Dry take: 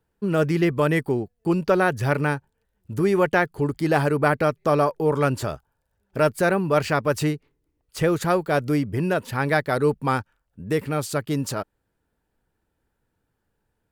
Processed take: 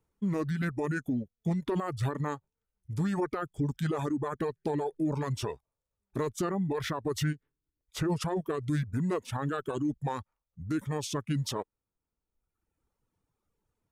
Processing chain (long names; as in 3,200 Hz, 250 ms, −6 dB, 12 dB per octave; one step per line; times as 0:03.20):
brickwall limiter −17.5 dBFS, peak gain reduction 11.5 dB
formants moved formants −5 semitones
reverb reduction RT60 1.2 s
level −3.5 dB